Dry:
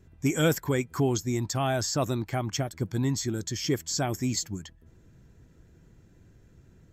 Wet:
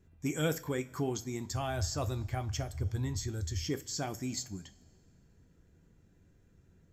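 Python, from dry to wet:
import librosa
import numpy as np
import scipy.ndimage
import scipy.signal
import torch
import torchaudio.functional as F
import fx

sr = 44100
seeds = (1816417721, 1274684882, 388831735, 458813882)

y = fx.low_shelf_res(x, sr, hz=120.0, db=13.5, q=3.0, at=(1.49, 3.66))
y = fx.rev_double_slope(y, sr, seeds[0], early_s=0.25, late_s=2.1, knee_db=-20, drr_db=9.0)
y = F.gain(torch.from_numpy(y), -8.0).numpy()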